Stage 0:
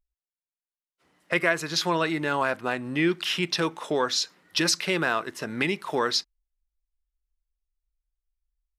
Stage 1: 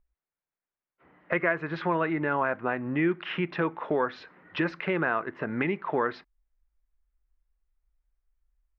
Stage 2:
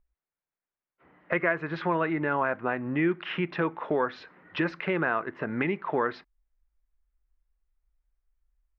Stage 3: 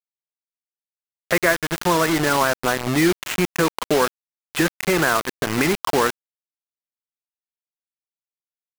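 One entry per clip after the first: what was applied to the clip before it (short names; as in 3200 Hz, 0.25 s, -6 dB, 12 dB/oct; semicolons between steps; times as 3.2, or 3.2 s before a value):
LPF 2100 Hz 24 dB/oct; compressor 1.5:1, threshold -46 dBFS, peak gain reduction 10 dB; gain +7.5 dB
nothing audible
bit-crush 5-bit; gain +7.5 dB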